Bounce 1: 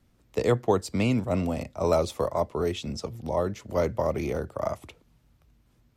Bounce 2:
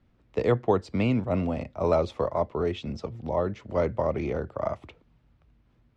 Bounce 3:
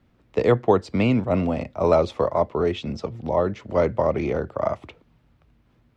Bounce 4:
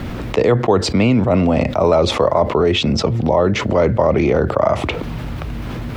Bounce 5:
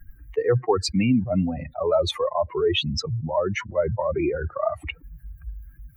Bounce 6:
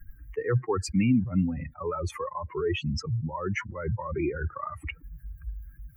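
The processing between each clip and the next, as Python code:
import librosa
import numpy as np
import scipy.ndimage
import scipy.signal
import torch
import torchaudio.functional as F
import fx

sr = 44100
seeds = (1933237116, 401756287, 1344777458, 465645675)

y1 = scipy.signal.sosfilt(scipy.signal.butter(2, 3100.0, 'lowpass', fs=sr, output='sos'), x)
y2 = fx.low_shelf(y1, sr, hz=77.0, db=-7.0)
y2 = y2 * librosa.db_to_amplitude(5.5)
y3 = fx.env_flatten(y2, sr, amount_pct=70)
y3 = y3 * librosa.db_to_amplitude(2.0)
y4 = fx.bin_expand(y3, sr, power=3.0)
y4 = y4 * librosa.db_to_amplitude(-1.5)
y5 = fx.fixed_phaser(y4, sr, hz=1600.0, stages=4)
y5 = y5 * librosa.db_to_amplitude(-1.0)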